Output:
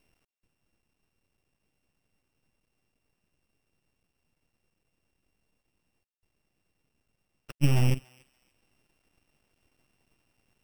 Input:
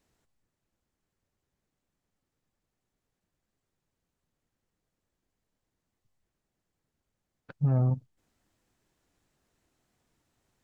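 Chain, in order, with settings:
samples sorted by size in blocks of 16 samples
half-wave rectification
feedback echo with a high-pass in the loop 286 ms, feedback 27%, high-pass 1,200 Hz, level −22 dB
level +7.5 dB

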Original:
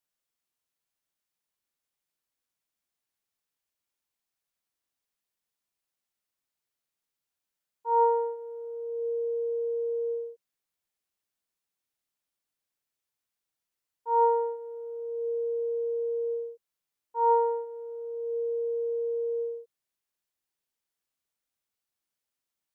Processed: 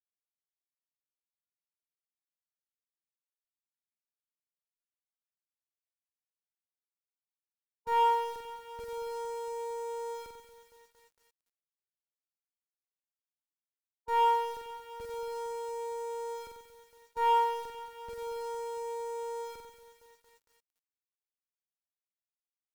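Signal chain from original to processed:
downward expander −32 dBFS
parametric band 610 Hz +5.5 dB 0.4 octaves
in parallel at −8.5 dB: comparator with hysteresis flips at −37.5 dBFS
on the sum: harmonic generator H 3 −33 dB, 4 −15 dB, 5 −32 dB, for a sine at −13.5 dBFS
flutter between parallel walls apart 7.9 metres, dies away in 0.72 s
feedback echo at a low word length 229 ms, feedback 80%, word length 8 bits, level −12.5 dB
level −7 dB

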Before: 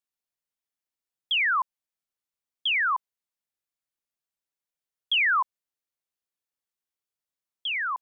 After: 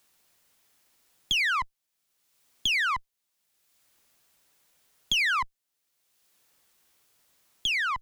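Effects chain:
one-sided soft clipper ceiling −36 dBFS
multiband upward and downward compressor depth 70%
level +3 dB

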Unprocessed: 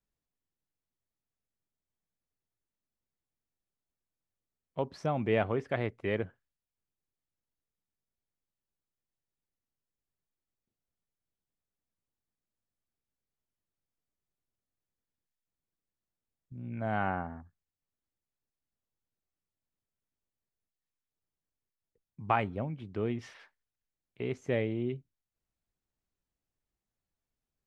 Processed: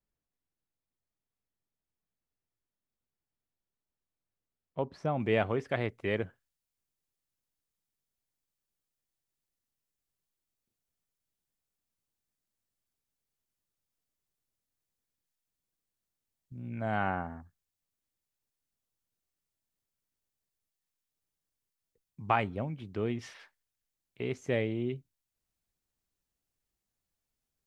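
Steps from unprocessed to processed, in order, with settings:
high-shelf EQ 3,400 Hz −8 dB, from 0:05.20 +6.5 dB

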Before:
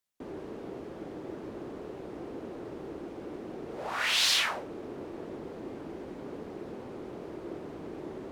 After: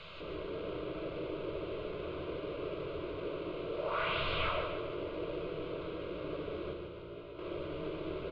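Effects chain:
linear delta modulator 32 kbit/s, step −38.5 dBFS
low-pass filter 3,200 Hz 12 dB per octave
low-shelf EQ 140 Hz +3.5 dB
phaser with its sweep stopped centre 1,200 Hz, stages 8
hollow resonant body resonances 200/630/1,800 Hz, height 6 dB
0:06.73–0:07.39: tuned comb filter 58 Hz, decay 0.42 s, harmonics all, mix 90%
repeating echo 148 ms, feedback 46%, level −6.5 dB
on a send at −5 dB: convolution reverb RT60 0.60 s, pre-delay 7 ms

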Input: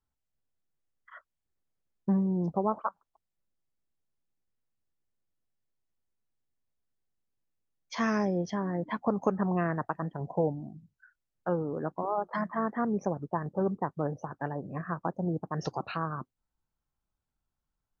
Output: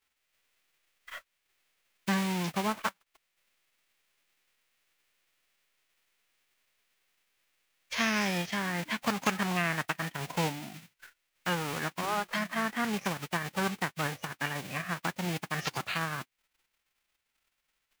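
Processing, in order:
spectral envelope flattened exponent 0.3
parametric band 2,300 Hz +11.5 dB 1.6 octaves
in parallel at −1 dB: downward compressor, threshold −39 dBFS, peak gain reduction 19.5 dB
on the sum: level −5 dB

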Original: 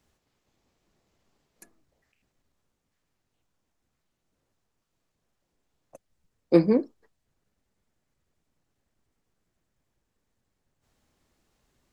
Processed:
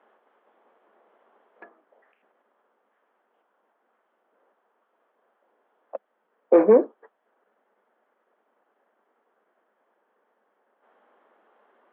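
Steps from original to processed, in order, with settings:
Chebyshev band-pass filter 210–3,300 Hz, order 5
flat-topped bell 830 Hz +15 dB 2.4 octaves
brickwall limiter −9 dBFS, peak gain reduction 11 dB
level +2 dB

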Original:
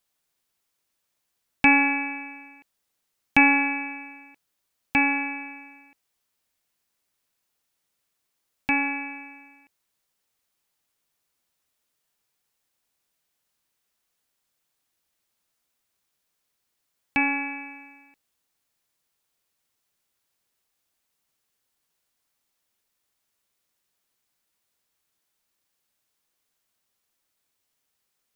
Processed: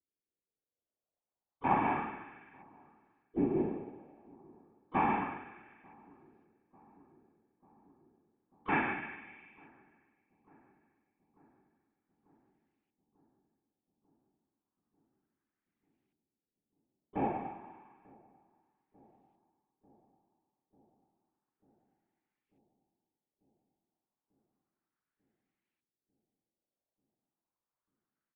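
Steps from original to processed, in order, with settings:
brickwall limiter −15 dBFS, peak gain reduction 11 dB
pitch-shifted copies added −12 semitones −17 dB, −5 semitones −12 dB, +5 semitones −12 dB
random phases in short frames
auto-filter low-pass saw up 0.31 Hz 320–2,500 Hz
on a send: feedback echo with a low-pass in the loop 893 ms, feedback 77%, low-pass 1,100 Hz, level −20 dB
on the sum: expander for the loud parts 1.5 to 1, over −37 dBFS
level −4.5 dB

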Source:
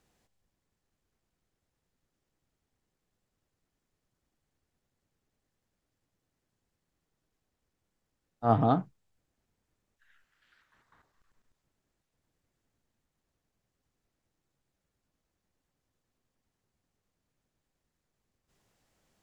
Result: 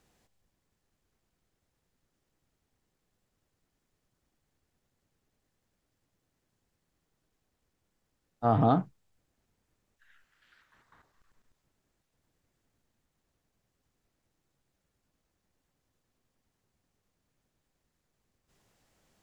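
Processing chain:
brickwall limiter −15 dBFS, peak gain reduction 6 dB
level +3 dB

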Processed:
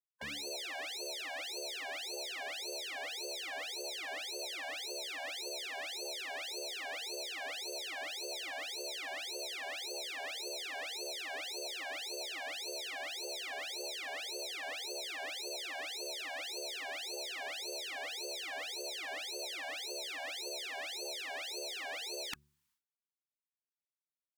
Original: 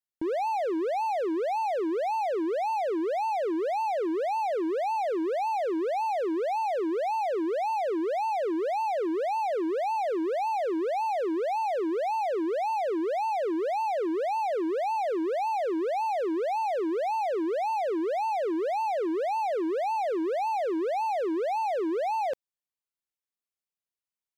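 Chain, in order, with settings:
hum removal 72.3 Hz, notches 11
gate on every frequency bin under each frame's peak −30 dB weak
level +11.5 dB

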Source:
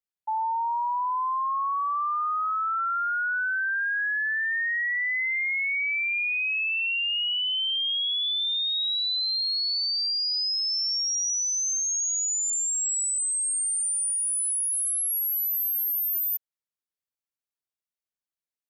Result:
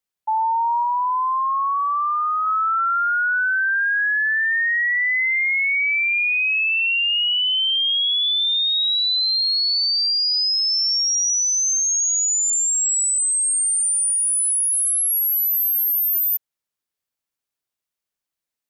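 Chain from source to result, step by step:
0:00.83–0:02.47: high-shelf EQ 3,300 Hz −11 dB
level +7 dB

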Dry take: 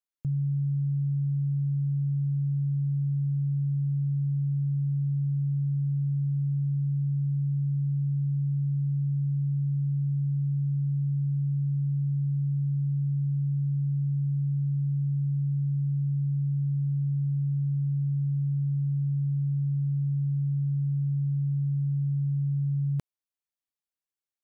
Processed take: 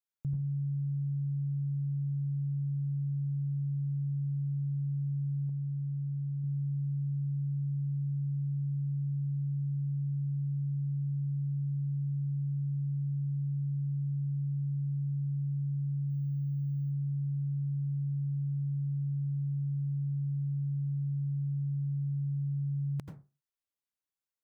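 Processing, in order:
convolution reverb RT60 0.30 s, pre-delay 78 ms, DRR 2.5 dB
0:05.49–0:06.44: dynamic equaliser 260 Hz, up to −4 dB, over −47 dBFS, Q 0.84
0:16.10–0:16.91: bad sample-rate conversion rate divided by 2×, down none, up hold
level −4.5 dB

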